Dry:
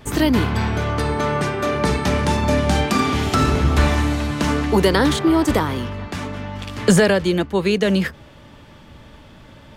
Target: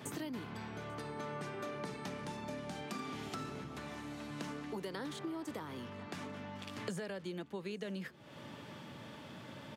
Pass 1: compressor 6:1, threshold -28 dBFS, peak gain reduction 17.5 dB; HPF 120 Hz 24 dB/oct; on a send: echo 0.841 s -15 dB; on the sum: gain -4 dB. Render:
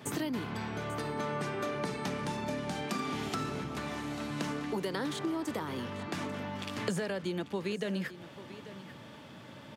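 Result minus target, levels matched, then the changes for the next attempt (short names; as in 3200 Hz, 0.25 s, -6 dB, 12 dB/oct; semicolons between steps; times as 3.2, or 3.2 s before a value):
compressor: peak gain reduction -7.5 dB; echo-to-direct +11 dB
change: compressor 6:1, threshold -37 dBFS, peak gain reduction 25 dB; change: echo 0.841 s -26 dB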